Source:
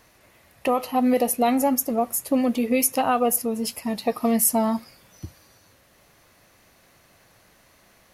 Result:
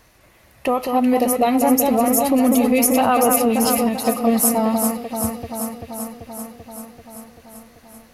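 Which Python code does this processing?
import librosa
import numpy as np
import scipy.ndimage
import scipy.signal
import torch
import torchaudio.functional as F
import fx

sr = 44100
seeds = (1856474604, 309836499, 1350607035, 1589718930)

y = fx.low_shelf(x, sr, hz=83.0, db=8.0)
y = fx.echo_alternate(y, sr, ms=194, hz=2400.0, feedback_pct=84, wet_db=-5)
y = fx.env_flatten(y, sr, amount_pct=50, at=(1.78, 3.89))
y = y * librosa.db_to_amplitude(2.0)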